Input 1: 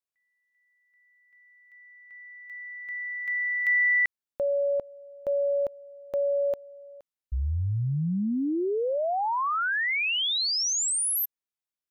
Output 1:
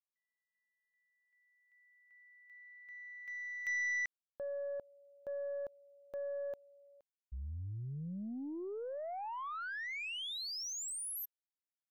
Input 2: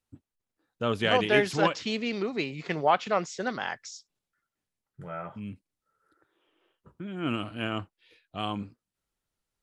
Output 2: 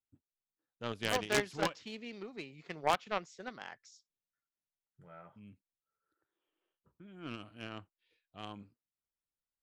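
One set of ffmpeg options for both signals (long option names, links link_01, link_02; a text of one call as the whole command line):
ffmpeg -i in.wav -af "aeval=exprs='0.376*(cos(1*acos(clip(val(0)/0.376,-1,1)))-cos(1*PI/2))+0.00841*(cos(2*acos(clip(val(0)/0.376,-1,1)))-cos(2*PI/2))+0.106*(cos(3*acos(clip(val(0)/0.376,-1,1)))-cos(3*PI/2))':channel_layout=same,aeval=exprs='0.168*(abs(mod(val(0)/0.168+3,4)-2)-1)':channel_layout=same" out.wav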